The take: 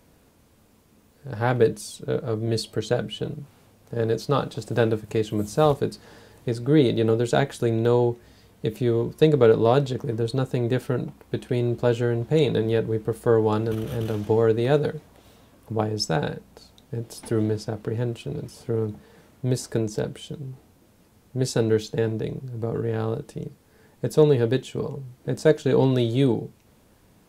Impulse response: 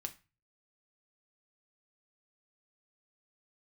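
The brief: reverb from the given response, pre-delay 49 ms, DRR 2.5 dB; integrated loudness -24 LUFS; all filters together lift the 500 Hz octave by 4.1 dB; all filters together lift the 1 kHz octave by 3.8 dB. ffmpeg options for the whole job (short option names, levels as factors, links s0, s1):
-filter_complex "[0:a]equalizer=f=500:t=o:g=4,equalizer=f=1000:t=o:g=3.5,asplit=2[s0][s1];[1:a]atrim=start_sample=2205,adelay=49[s2];[s1][s2]afir=irnorm=-1:irlink=0,volume=0.944[s3];[s0][s3]amix=inputs=2:normalize=0,volume=0.596"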